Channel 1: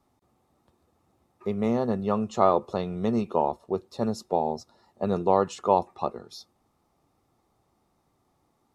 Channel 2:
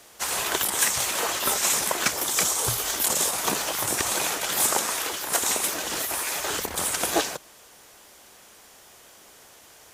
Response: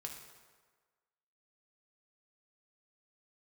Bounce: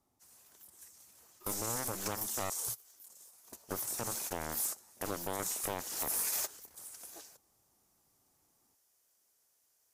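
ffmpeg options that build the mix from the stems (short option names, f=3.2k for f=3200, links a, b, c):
-filter_complex "[0:a]acompressor=threshold=-30dB:ratio=2,aeval=exprs='0.2*(cos(1*acos(clip(val(0)/0.2,-1,1)))-cos(1*PI/2))+0.0316*(cos(4*acos(clip(val(0)/0.2,-1,1)))-cos(4*PI/2))+0.00178*(cos(5*acos(clip(val(0)/0.2,-1,1)))-cos(5*PI/2))+0.0398*(cos(7*acos(clip(val(0)/0.2,-1,1)))-cos(7*PI/2))':c=same,volume=0dB,asplit=3[a][b][c];[a]atrim=end=2.5,asetpts=PTS-STARTPTS,afade=t=out:st=2.496:d=0.004:c=hsin[d];[b]atrim=start=2.5:end=3.52,asetpts=PTS-STARTPTS,volume=0[e];[c]atrim=start=3.52,asetpts=PTS-STARTPTS,afade=t=in:d=0.004:c=hsin[f];[d][e][f]concat=n=3:v=0:a=1,asplit=2[g][h];[1:a]aexciter=amount=3.5:drive=4.3:freq=4.7k,volume=-11dB,afade=t=in:st=5.8:d=0.72:silence=0.298538[i];[h]apad=whole_len=438012[j];[i][j]sidechaingate=range=-21dB:threshold=-57dB:ratio=16:detection=peak[k];[g][k]amix=inputs=2:normalize=0,alimiter=limit=-23.5dB:level=0:latency=1:release=24"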